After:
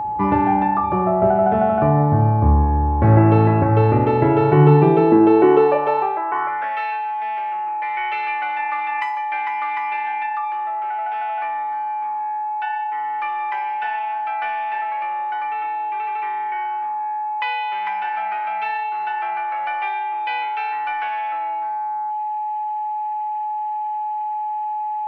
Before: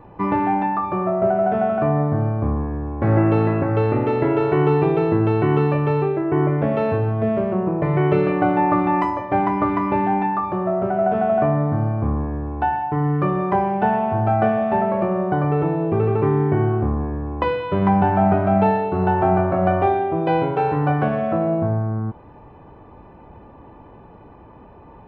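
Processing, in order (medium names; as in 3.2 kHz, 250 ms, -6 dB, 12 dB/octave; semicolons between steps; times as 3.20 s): high-pass sweep 70 Hz -> 2.2 kHz, 4.08–6.91 s; whistle 850 Hz -23 dBFS; trim +1.5 dB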